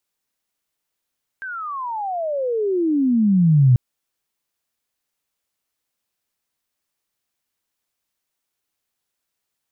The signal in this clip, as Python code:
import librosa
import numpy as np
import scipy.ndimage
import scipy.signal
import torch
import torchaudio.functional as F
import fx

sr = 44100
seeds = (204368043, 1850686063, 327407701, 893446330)

y = fx.chirp(sr, length_s=2.34, from_hz=1600.0, to_hz=120.0, law='logarithmic', from_db=-27.5, to_db=-9.0)